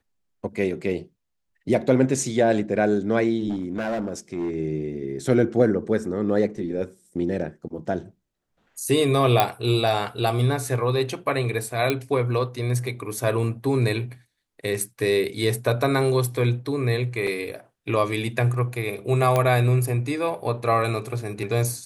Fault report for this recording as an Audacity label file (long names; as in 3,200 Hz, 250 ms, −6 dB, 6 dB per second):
3.490000	4.540000	clipping −22.5 dBFS
9.400000	9.400000	click −4 dBFS
11.900000	11.900000	click −9 dBFS
17.270000	17.270000	drop-out 4 ms
19.360000	19.360000	click −9 dBFS